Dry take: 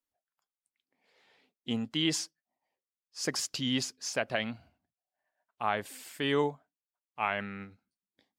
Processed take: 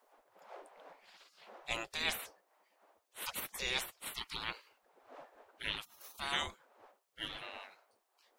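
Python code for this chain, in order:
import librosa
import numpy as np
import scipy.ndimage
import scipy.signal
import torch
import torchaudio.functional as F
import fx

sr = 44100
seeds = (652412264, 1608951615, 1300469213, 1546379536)

y = fx.dmg_wind(x, sr, seeds[0], corner_hz=140.0, level_db=-50.0)
y = fx.spec_gate(y, sr, threshold_db=-25, keep='weak')
y = y * librosa.db_to_amplitude(11.5)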